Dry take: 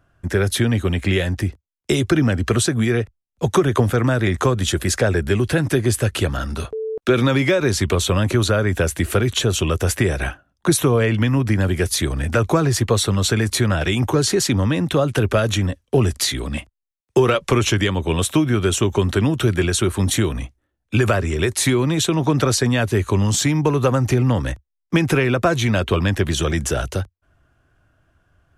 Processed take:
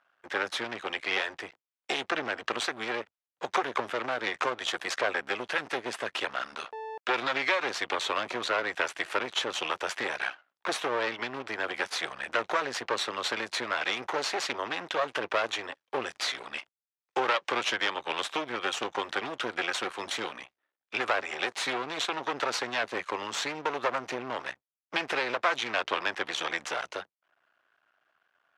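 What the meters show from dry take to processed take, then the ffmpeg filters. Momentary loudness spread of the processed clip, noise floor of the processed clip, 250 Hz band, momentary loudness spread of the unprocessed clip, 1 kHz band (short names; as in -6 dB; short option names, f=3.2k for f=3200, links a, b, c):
7 LU, under -85 dBFS, -22.0 dB, 6 LU, -4.0 dB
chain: -af "aeval=exprs='max(val(0),0)':c=same,highpass=780,lowpass=3.9k"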